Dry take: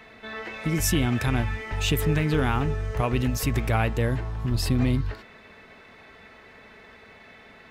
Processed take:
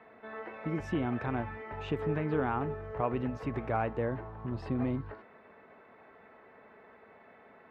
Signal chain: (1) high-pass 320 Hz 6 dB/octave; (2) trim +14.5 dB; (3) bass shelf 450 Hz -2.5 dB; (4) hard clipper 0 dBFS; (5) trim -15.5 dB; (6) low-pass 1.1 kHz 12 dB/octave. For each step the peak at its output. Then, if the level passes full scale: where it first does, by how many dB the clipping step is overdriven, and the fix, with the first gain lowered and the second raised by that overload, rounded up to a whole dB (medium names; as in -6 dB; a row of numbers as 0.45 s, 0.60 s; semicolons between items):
-10.0 dBFS, +4.5 dBFS, +4.0 dBFS, 0.0 dBFS, -15.5 dBFS, -17.0 dBFS; step 2, 4.0 dB; step 2 +10.5 dB, step 5 -11.5 dB